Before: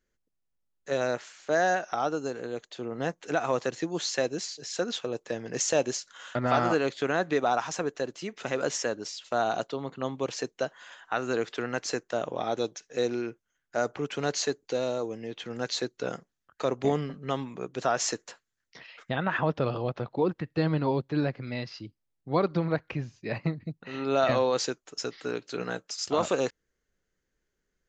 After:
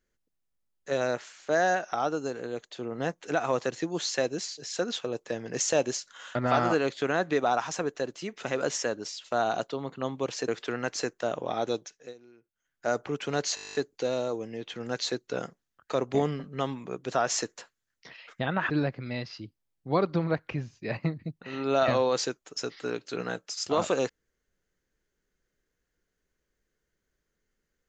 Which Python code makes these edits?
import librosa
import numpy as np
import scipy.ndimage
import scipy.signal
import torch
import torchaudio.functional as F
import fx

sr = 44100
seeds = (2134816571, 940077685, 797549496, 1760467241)

y = fx.edit(x, sr, fx.cut(start_s=10.48, length_s=0.9),
    fx.fade_down_up(start_s=12.55, length_s=1.27, db=-24.0, fade_s=0.49, curve='qsin'),
    fx.stutter(start_s=14.45, slice_s=0.02, count=11),
    fx.cut(start_s=19.4, length_s=1.71), tone=tone)